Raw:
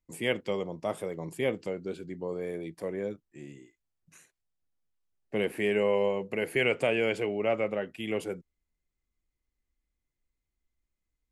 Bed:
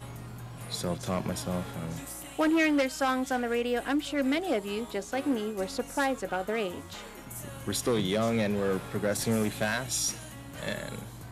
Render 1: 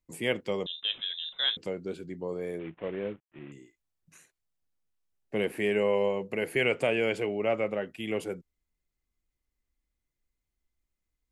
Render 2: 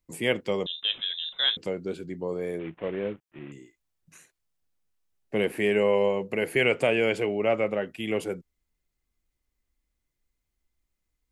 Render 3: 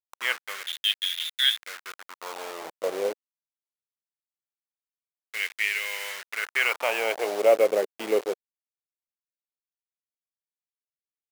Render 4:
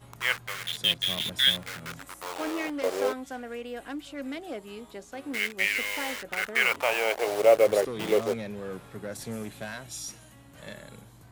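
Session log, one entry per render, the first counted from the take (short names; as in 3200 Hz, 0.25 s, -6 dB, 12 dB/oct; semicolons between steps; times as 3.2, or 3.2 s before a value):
0.66–1.57 inverted band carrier 3800 Hz; 2.59–3.52 CVSD 16 kbps
gain +3.5 dB
level-crossing sampler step -29 dBFS; LFO high-pass sine 0.22 Hz 440–2100 Hz
add bed -8.5 dB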